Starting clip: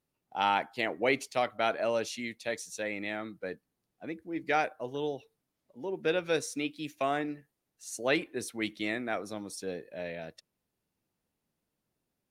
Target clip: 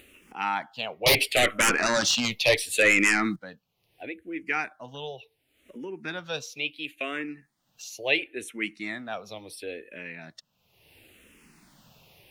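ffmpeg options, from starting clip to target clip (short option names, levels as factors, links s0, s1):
-filter_complex "[0:a]equalizer=f=2700:t=o:w=0.9:g=11.5,acompressor=mode=upward:threshold=0.0282:ratio=2.5,asettb=1/sr,asplit=3[s0][s1][s2];[s0]atrim=end=1.064[s3];[s1]atrim=start=1.06:end=3.36,asetpts=PTS-STARTPTS,afade=t=in:d=0.004:c=qsin,afade=t=out:st=2.296:d=0.004:c=qsin,aeval=exprs='0.251*sin(PI/2*3.98*val(0)/0.251)':c=same[s4];[s2]atrim=start=3.356[s5];[s3][s4]acrossfade=d=0.004:c1=hsin:c2=qsin[s6];[s6][s5]acrossfade=d=0.004:c1=qsin:c2=hsin,asplit=2[s7][s8];[s8]afreqshift=-0.72[s9];[s7][s9]amix=inputs=2:normalize=1"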